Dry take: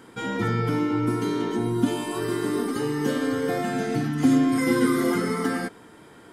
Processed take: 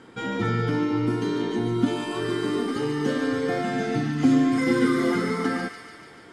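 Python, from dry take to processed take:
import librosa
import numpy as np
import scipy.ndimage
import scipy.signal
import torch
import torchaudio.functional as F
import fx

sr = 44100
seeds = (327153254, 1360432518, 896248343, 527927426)

y = scipy.signal.sosfilt(scipy.signal.butter(2, 6200.0, 'lowpass', fs=sr, output='sos'), x)
y = fx.notch(y, sr, hz=1000.0, q=15.0)
y = fx.echo_wet_highpass(y, sr, ms=145, feedback_pct=68, hz=1500.0, wet_db=-7.0)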